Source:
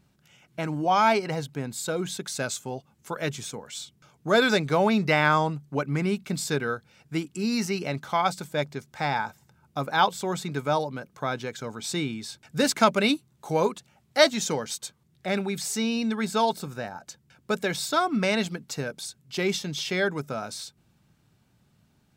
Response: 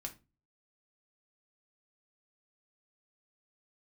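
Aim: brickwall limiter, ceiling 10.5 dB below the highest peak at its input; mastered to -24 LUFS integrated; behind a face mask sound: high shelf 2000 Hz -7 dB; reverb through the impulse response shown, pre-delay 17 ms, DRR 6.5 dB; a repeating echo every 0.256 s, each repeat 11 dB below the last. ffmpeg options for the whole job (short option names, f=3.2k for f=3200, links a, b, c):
-filter_complex "[0:a]alimiter=limit=-14.5dB:level=0:latency=1,aecho=1:1:256|512|768:0.282|0.0789|0.0221,asplit=2[a][b];[1:a]atrim=start_sample=2205,adelay=17[c];[b][c]afir=irnorm=-1:irlink=0,volume=-4dB[d];[a][d]amix=inputs=2:normalize=0,highshelf=f=2k:g=-7,volume=4.5dB"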